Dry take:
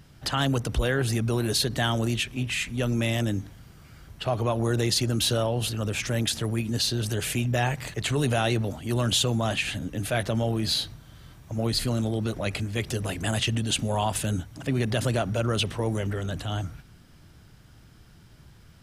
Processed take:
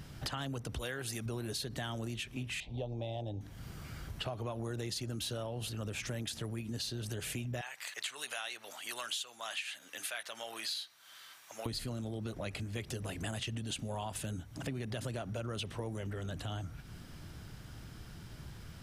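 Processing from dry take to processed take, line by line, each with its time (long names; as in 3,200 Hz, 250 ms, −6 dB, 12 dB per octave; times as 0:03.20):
0:00.78–0:01.26: spectral tilt +2 dB per octave
0:02.60–0:03.41: drawn EQ curve 110 Hz 0 dB, 220 Hz −9 dB, 490 Hz +3 dB, 820 Hz +9 dB, 1,400 Hz −26 dB, 3,700 Hz −1 dB, 6,700 Hz −22 dB, 12,000 Hz −28 dB
0:07.61–0:11.66: high-pass filter 1,300 Hz
whole clip: downward compressor 5 to 1, threshold −42 dBFS; level +3.5 dB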